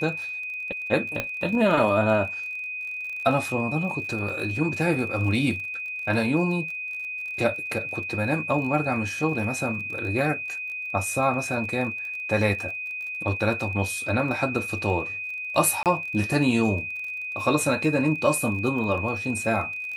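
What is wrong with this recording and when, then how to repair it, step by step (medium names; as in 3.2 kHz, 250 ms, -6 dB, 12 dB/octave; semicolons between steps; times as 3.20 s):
crackle 32 per s -34 dBFS
whine 2.5 kHz -30 dBFS
1.20 s: pop -11 dBFS
15.83–15.86 s: dropout 28 ms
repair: de-click; band-stop 2.5 kHz, Q 30; interpolate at 15.83 s, 28 ms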